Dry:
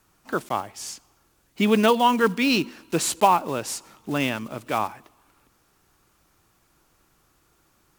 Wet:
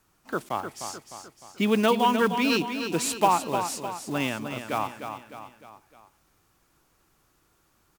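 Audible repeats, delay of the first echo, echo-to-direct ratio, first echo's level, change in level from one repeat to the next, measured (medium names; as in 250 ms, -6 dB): 4, 304 ms, -7.0 dB, -8.0 dB, -6.0 dB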